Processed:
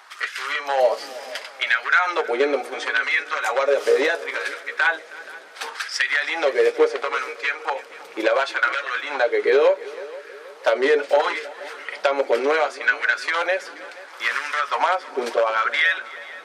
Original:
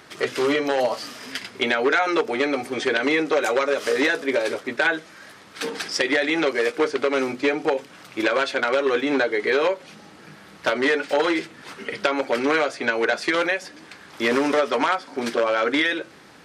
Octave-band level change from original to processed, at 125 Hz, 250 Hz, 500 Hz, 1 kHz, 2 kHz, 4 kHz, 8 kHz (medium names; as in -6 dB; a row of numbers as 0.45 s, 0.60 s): under -25 dB, -10.0 dB, +1.0 dB, +2.0 dB, +2.5 dB, -1.0 dB, -1.5 dB